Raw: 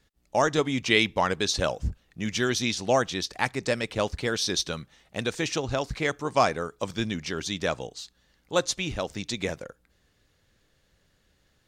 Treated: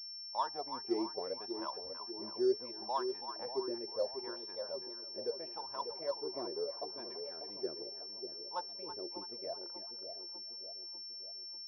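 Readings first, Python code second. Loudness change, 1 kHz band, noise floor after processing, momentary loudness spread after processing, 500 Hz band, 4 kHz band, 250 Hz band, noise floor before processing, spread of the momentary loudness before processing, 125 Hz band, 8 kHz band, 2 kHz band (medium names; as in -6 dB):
-12.5 dB, -11.5 dB, -47 dBFS, 7 LU, -10.0 dB, -9.5 dB, -12.5 dB, -69 dBFS, 10 LU, -31.5 dB, under -35 dB, -29.0 dB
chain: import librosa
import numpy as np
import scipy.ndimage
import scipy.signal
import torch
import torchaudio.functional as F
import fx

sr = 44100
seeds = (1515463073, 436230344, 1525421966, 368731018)

y = fx.wah_lfo(x, sr, hz=0.74, low_hz=350.0, high_hz=1000.0, q=14.0)
y = fx.echo_split(y, sr, split_hz=820.0, low_ms=594, high_ms=328, feedback_pct=52, wet_db=-8.0)
y = fx.pwm(y, sr, carrier_hz=5400.0)
y = y * librosa.db_to_amplitude(1.5)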